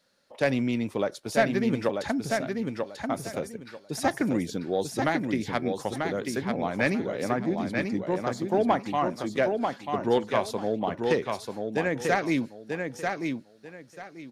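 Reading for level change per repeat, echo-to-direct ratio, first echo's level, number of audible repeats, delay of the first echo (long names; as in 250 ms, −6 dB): −13.0 dB, −4.5 dB, −4.5 dB, 3, 940 ms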